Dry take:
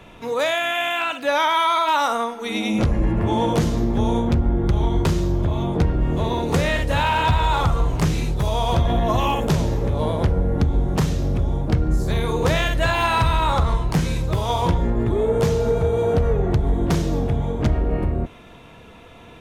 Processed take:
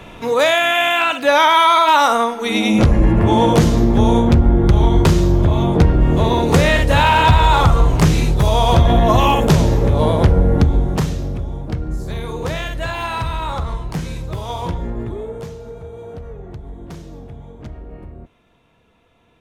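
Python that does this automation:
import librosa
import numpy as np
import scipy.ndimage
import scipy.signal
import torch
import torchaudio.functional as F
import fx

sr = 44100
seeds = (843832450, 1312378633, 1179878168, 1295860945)

y = fx.gain(x, sr, db=fx.line((10.54, 7.0), (11.48, -4.0), (15.0, -4.0), (15.58, -14.0)))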